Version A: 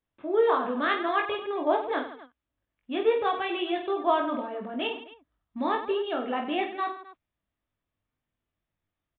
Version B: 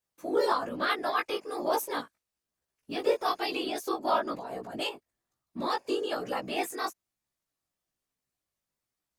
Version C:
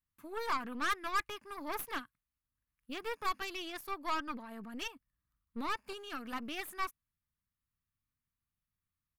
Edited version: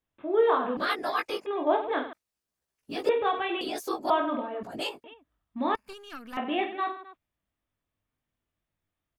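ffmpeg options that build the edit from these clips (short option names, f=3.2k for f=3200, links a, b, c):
-filter_complex "[1:a]asplit=4[a][b][c][d];[0:a]asplit=6[e][f][g][h][i][j];[e]atrim=end=0.772[k];[a]atrim=start=0.768:end=1.462[l];[f]atrim=start=1.458:end=2.132[m];[b]atrim=start=2.128:end=3.092[n];[g]atrim=start=3.088:end=3.612[o];[c]atrim=start=3.608:end=4.102[p];[h]atrim=start=4.098:end=4.632[q];[d]atrim=start=4.628:end=5.042[r];[i]atrim=start=5.038:end=5.752[s];[2:a]atrim=start=5.748:end=6.372[t];[j]atrim=start=6.368[u];[k][l]acrossfade=d=0.004:c1=hsin:c2=hsin[v];[v][m]acrossfade=d=0.004:c1=hsin:c2=hsin[w];[w][n]acrossfade=d=0.004:c1=hsin:c2=hsin[x];[x][o]acrossfade=d=0.004:c1=hsin:c2=hsin[y];[y][p]acrossfade=d=0.004:c1=hsin:c2=hsin[z];[z][q]acrossfade=d=0.004:c1=hsin:c2=hsin[aa];[aa][r]acrossfade=d=0.004:c1=hsin:c2=hsin[ab];[ab][s]acrossfade=d=0.004:c1=hsin:c2=hsin[ac];[ac][t]acrossfade=d=0.004:c1=hsin:c2=hsin[ad];[ad][u]acrossfade=d=0.004:c1=hsin:c2=hsin"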